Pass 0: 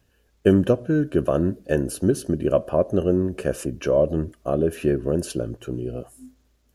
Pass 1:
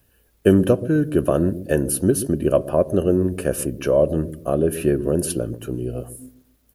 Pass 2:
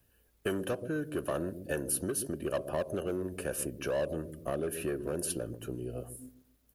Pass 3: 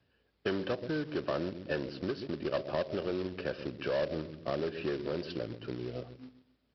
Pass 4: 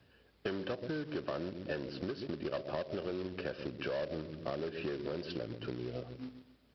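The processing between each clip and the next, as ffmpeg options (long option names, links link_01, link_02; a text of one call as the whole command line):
ffmpeg -i in.wav -filter_complex "[0:a]acrossover=split=510[link_01][link_02];[link_01]aecho=1:1:130|260|390|520:0.282|0.0958|0.0326|0.0111[link_03];[link_02]aexciter=amount=2.5:drive=8.3:freq=9000[link_04];[link_03][link_04]amix=inputs=2:normalize=0,volume=2dB" out.wav
ffmpeg -i in.wav -filter_complex "[0:a]acrossover=split=450|890[link_01][link_02][link_03];[link_01]acompressor=threshold=-29dB:ratio=6[link_04];[link_02]volume=26dB,asoftclip=hard,volume=-26dB[link_05];[link_04][link_05][link_03]amix=inputs=3:normalize=0,volume=-8dB" out.wav
ffmpeg -i in.wav -af "highpass=94,aresample=11025,acrusher=bits=3:mode=log:mix=0:aa=0.000001,aresample=44100" out.wav
ffmpeg -i in.wav -af "acompressor=threshold=-48dB:ratio=2.5,volume=7.5dB" out.wav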